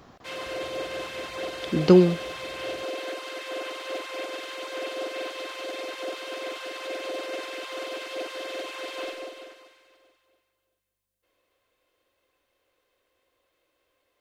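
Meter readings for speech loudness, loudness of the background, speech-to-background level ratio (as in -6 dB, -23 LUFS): -20.0 LUFS, -34.0 LUFS, 14.0 dB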